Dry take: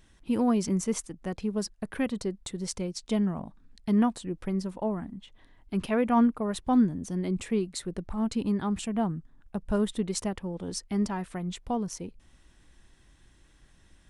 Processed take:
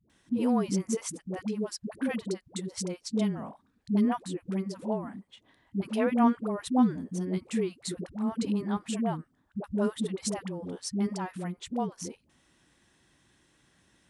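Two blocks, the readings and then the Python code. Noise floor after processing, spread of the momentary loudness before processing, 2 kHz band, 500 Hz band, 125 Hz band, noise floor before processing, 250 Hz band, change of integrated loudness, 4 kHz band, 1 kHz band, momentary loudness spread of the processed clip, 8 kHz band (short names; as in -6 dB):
-70 dBFS, 11 LU, -1.0 dB, -1.0 dB, -2.0 dB, -60 dBFS, -1.5 dB, -1.5 dB, -1.0 dB, -1.0 dB, 12 LU, -1.0 dB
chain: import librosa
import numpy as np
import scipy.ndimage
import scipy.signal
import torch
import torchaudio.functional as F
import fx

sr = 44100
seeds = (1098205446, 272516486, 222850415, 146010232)

y = scipy.signal.sosfilt(scipy.signal.butter(2, 130.0, 'highpass', fs=sr, output='sos'), x)
y = fx.dispersion(y, sr, late='highs', ms=99.0, hz=430.0)
y = F.gain(torch.from_numpy(y), -1.0).numpy()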